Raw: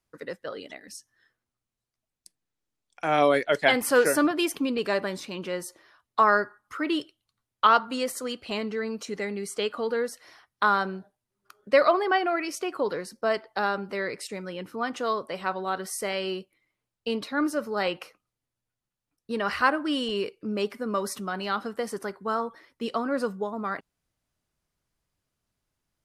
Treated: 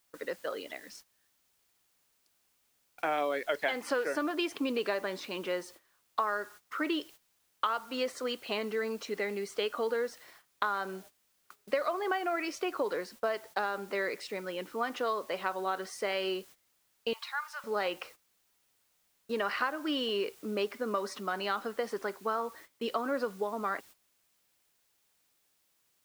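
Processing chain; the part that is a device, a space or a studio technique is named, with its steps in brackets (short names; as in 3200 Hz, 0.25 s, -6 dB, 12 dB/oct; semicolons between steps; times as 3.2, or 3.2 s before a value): baby monitor (BPF 300–4500 Hz; compressor 12:1, threshold -27 dBFS, peak gain reduction 14 dB; white noise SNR 23 dB; gate -51 dBFS, range -15 dB); 17.13–17.64 elliptic high-pass 860 Hz, stop band 60 dB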